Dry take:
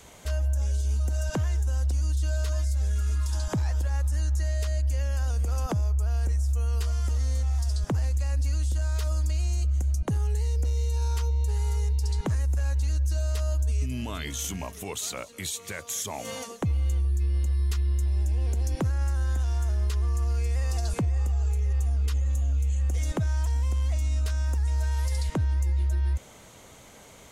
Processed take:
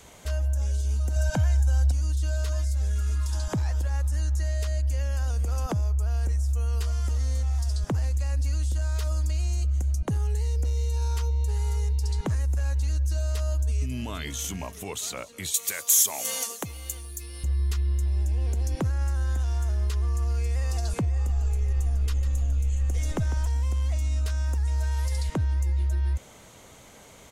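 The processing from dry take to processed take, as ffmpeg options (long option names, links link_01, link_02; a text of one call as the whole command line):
ffmpeg -i in.wav -filter_complex "[0:a]asettb=1/sr,asplit=3[link_01][link_02][link_03];[link_01]atrim=end=1.164[link_04];[link_02]atrim=start=1.16:end=1.92,asetpts=PTS-STARTPTS,afade=type=in:duration=0.004:curve=qsin,afade=type=out:start_time=0.756:duration=0.004:curve=qsin,aecho=1:1:1.3:0.72,atrim=end_sample=33516[link_05];[link_03]atrim=start=1.916[link_06];[link_04][link_05]acrossfade=duration=0.004:curve1=hsin:curve2=qsin[link_07];[link_07][link_06]acrossfade=duration=0.004:curve1=qsin:curve2=hsin,asettb=1/sr,asplit=3[link_08][link_09][link_10];[link_08]atrim=end=15.544[link_11];[link_09]atrim=start=15.54:end=17.44,asetpts=PTS-STARTPTS,afade=type=in:duration=0.004:curve=qsin,afade=type=out:start_time=1.896:duration=0.004:curve=qsin,aemphasis=mode=production:type=riaa[link_12];[link_10]atrim=start=17.436[link_13];[link_11][link_12]acrossfade=duration=0.004:curve1=hsin:curve2=qsin[link_14];[link_14][link_13]acrossfade=duration=0.004:curve1=qsin:curve2=hsin,asplit=3[link_15][link_16][link_17];[link_15]afade=type=out:start_time=21.28:duration=0.02[link_18];[link_16]asplit=5[link_19][link_20][link_21][link_22][link_23];[link_20]adelay=149,afreqshift=-62,volume=-11dB[link_24];[link_21]adelay=298,afreqshift=-124,volume=-19.6dB[link_25];[link_22]adelay=447,afreqshift=-186,volume=-28.3dB[link_26];[link_23]adelay=596,afreqshift=-248,volume=-36.9dB[link_27];[link_19][link_24][link_25][link_26][link_27]amix=inputs=5:normalize=0,afade=type=in:start_time=21.28:duration=0.02,afade=type=out:start_time=23.46:duration=0.02[link_28];[link_17]afade=type=in:start_time=23.46:duration=0.02[link_29];[link_18][link_28][link_29]amix=inputs=3:normalize=0" out.wav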